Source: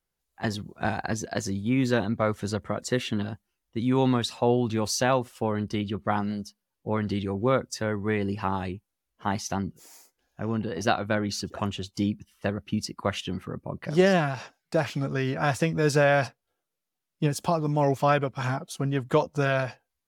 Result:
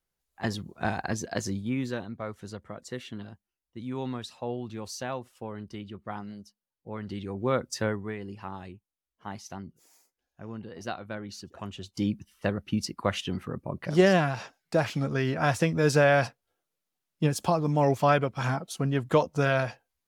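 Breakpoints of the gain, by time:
1.53 s -1.5 dB
2.04 s -11 dB
6.89 s -11 dB
7.85 s +1 dB
8.16 s -11 dB
11.57 s -11 dB
12.13 s 0 dB

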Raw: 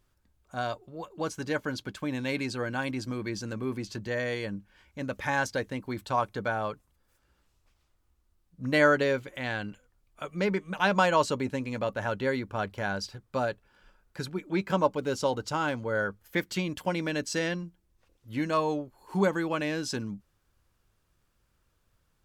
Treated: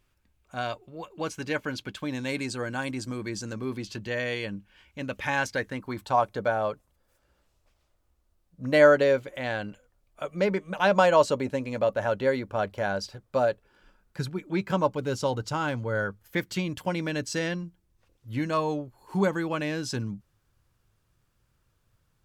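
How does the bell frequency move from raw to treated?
bell +7.5 dB 0.65 oct
1.88 s 2500 Hz
2.28 s 8000 Hz
3.38 s 8000 Hz
3.92 s 2800 Hz
5.36 s 2800 Hz
6.29 s 590 Hz
13.51 s 590 Hz
14.3 s 120 Hz

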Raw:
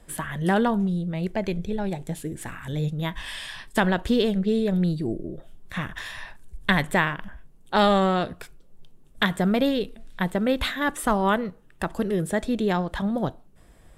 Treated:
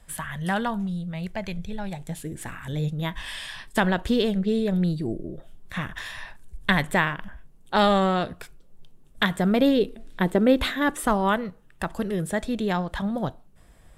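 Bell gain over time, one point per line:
bell 350 Hz 1.2 oct
1.9 s -13 dB
2.36 s -1.5 dB
9.38 s -1.5 dB
9.82 s +8 dB
10.63 s +8 dB
11.38 s -4 dB

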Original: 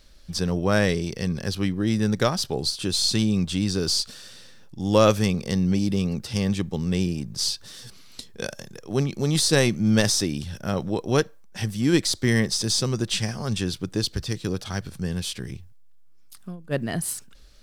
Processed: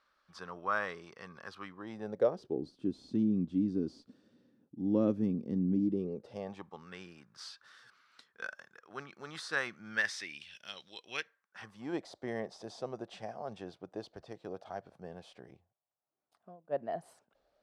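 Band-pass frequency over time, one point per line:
band-pass, Q 3.8
1.7 s 1200 Hz
2.66 s 270 Hz
5.84 s 270 Hz
6.88 s 1400 Hz
9.8 s 1400 Hz
10.89 s 3800 Hz
11.99 s 680 Hz

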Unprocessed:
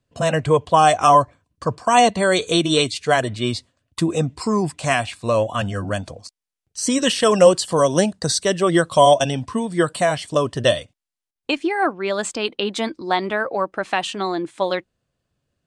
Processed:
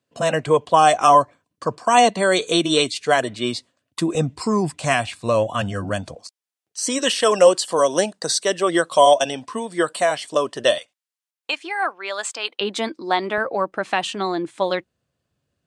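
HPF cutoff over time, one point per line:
200 Hz
from 4.15 s 89 Hz
from 6.15 s 340 Hz
from 10.78 s 790 Hz
from 12.61 s 220 Hz
from 13.38 s 62 Hz

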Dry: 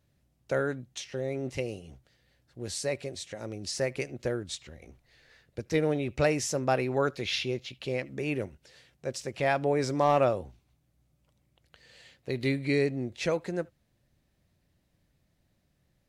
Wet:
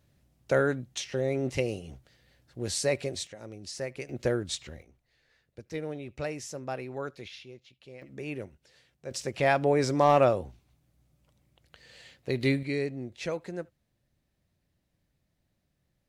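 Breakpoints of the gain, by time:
+4 dB
from 3.27 s -5.5 dB
from 4.09 s +3.5 dB
from 4.82 s -9 dB
from 7.28 s -16 dB
from 8.02 s -5.5 dB
from 9.11 s +2.5 dB
from 12.63 s -4.5 dB

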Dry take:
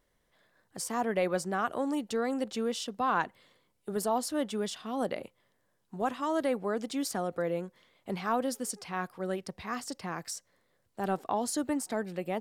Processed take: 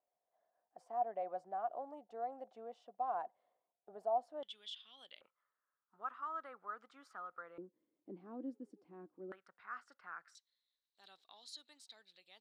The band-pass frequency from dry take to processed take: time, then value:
band-pass, Q 8.7
710 Hz
from 4.43 s 3300 Hz
from 5.21 s 1300 Hz
from 7.58 s 310 Hz
from 9.32 s 1400 Hz
from 10.35 s 3900 Hz

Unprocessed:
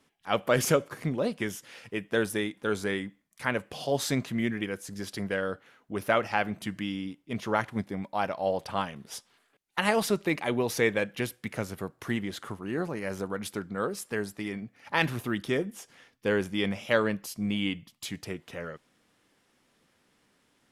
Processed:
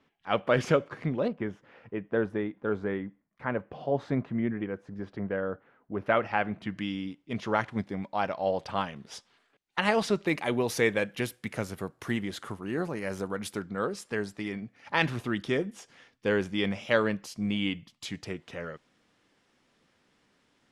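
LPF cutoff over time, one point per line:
3300 Hz
from 1.28 s 1300 Hz
from 6.06 s 2600 Hz
from 6.78 s 5900 Hz
from 10.27 s 12000 Hz
from 13.62 s 6900 Hz

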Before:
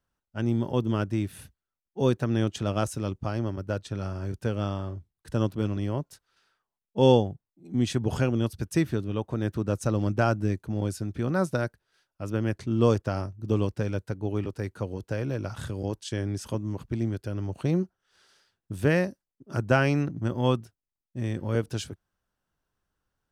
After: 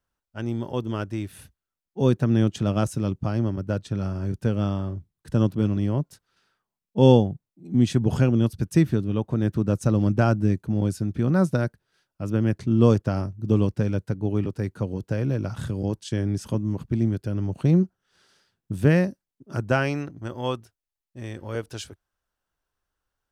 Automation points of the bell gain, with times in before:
bell 170 Hz 1.8 oct
1.26 s -3.5 dB
2.23 s +8 dB
18.83 s +8 dB
19.77 s -0.5 dB
20.11 s -8.5 dB

